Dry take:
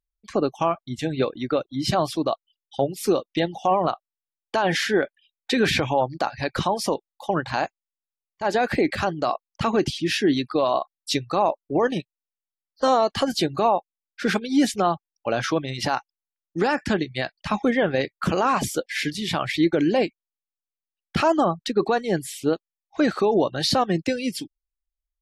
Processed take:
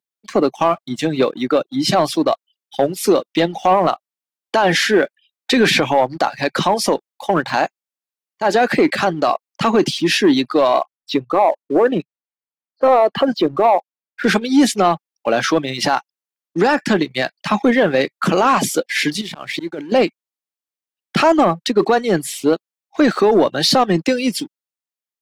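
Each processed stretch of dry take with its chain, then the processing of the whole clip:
0:10.81–0:14.24: spectral envelope exaggerated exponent 1.5 + low-pass filter 2,500 Hz
0:19.21–0:19.92: volume swells 602 ms + compressor whose output falls as the input rises −35 dBFS + slack as between gear wheels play −58 dBFS
whole clip: high-pass filter 160 Hz 24 dB per octave; leveller curve on the samples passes 1; level +4.5 dB

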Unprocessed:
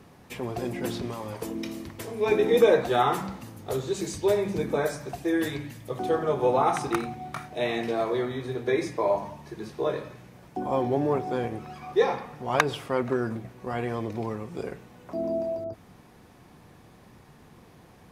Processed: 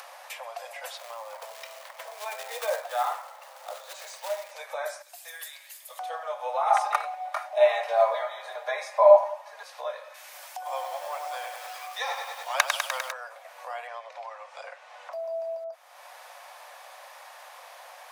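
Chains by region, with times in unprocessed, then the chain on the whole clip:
0:00.97–0:04.51: low-pass filter 1,800 Hz 6 dB per octave + floating-point word with a short mantissa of 2 bits
0:05.02–0:05.99: first-order pre-emphasis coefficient 0.9 + notch filter 5,900 Hz, Q 13 + noise that follows the level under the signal 22 dB
0:06.70–0:09.63: parametric band 690 Hz +10.5 dB 2.1 octaves + comb filter 4.9 ms, depth 67%
0:10.14–0:13.12: spectral tilt +3.5 dB per octave + feedback echo at a low word length 100 ms, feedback 80%, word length 7 bits, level −5.5 dB
0:13.87–0:15.13: high-pass filter 490 Hz + high-frequency loss of the air 77 metres
whole clip: Butterworth high-pass 540 Hz 96 dB per octave; upward compression, threshold −30 dBFS; level −3 dB

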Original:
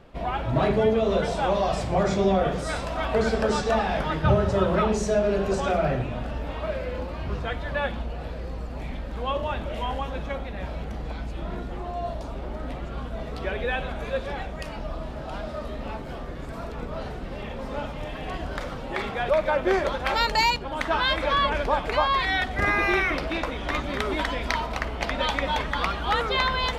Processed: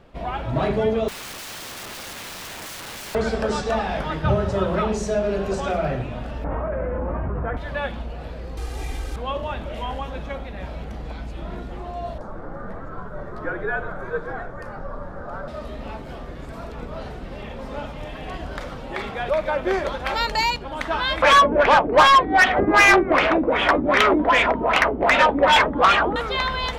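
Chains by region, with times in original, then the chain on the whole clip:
0:01.08–0:03.15: low-pass filter 2,700 Hz 6 dB per octave + downward compressor 5 to 1, threshold −23 dBFS + wrap-around overflow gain 31 dB
0:06.44–0:07.57: low-pass filter 1,600 Hz 24 dB per octave + envelope flattener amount 100%
0:08.57–0:09.16: linear delta modulator 64 kbit/s, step −36 dBFS + comb filter 2.5 ms, depth 92%
0:12.18–0:15.48: high shelf with overshoot 2,100 Hz −10 dB, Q 3 + frequency shifter −64 Hz
0:21.22–0:26.16: auto-filter low-pass sine 2.6 Hz 270–3,000 Hz + mid-hump overdrive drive 21 dB, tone 5,100 Hz, clips at −5 dBFS
whole clip: no processing

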